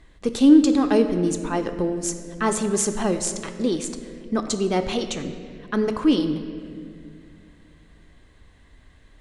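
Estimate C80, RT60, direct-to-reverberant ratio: 10.0 dB, 2.4 s, 7.0 dB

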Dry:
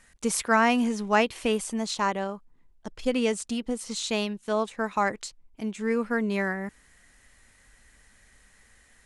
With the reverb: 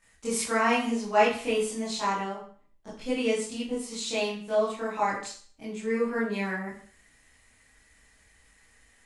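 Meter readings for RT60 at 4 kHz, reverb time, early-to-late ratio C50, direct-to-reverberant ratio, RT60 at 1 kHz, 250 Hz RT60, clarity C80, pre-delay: 0.45 s, 0.50 s, 4.0 dB, -11.0 dB, 0.45 s, 0.45 s, 9.0 dB, 19 ms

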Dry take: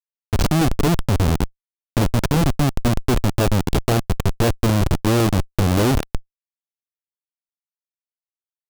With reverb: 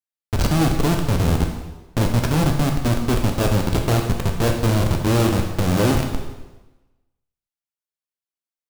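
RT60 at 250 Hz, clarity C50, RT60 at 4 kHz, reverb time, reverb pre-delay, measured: 1.2 s, 5.0 dB, 1.0 s, 1.1 s, 6 ms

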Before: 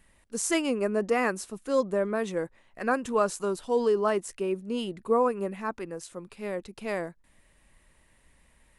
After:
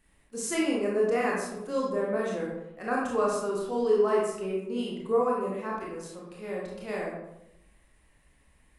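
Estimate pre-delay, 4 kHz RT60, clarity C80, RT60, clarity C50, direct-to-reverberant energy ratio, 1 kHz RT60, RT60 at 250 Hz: 24 ms, 0.50 s, 4.5 dB, 0.85 s, 0.5 dB, -4.5 dB, 0.80 s, 1.1 s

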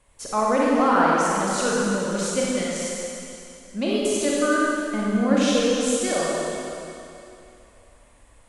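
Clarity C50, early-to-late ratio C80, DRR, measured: -4.5 dB, -2.5 dB, -6.0 dB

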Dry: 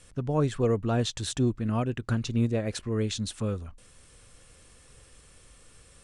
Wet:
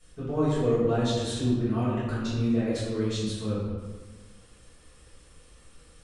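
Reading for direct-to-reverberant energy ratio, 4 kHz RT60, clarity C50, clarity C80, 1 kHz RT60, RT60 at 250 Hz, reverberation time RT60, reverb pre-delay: -11.5 dB, 0.85 s, -1.0 dB, 1.5 dB, 1.4 s, 1.6 s, 1.4 s, 3 ms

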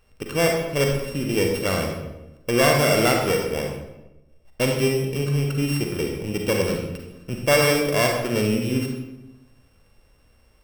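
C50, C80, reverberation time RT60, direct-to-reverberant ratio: 2.5 dB, 5.5 dB, 1.0 s, 1.0 dB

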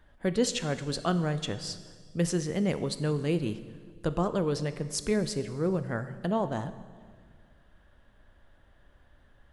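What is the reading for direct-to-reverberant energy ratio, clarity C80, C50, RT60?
11.0 dB, 14.5 dB, 13.0 dB, 1.7 s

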